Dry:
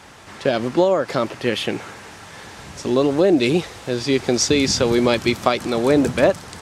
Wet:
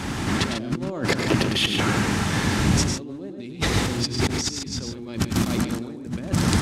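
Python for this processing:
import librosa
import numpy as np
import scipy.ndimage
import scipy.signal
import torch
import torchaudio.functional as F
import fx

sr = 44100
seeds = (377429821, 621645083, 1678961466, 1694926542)

y = fx.low_shelf_res(x, sr, hz=370.0, db=8.5, q=1.5)
y = fx.over_compress(y, sr, threshold_db=-29.0, ratio=-1.0)
y = fx.echo_multitap(y, sr, ms=(103, 143), db=(-7.0, -7.5))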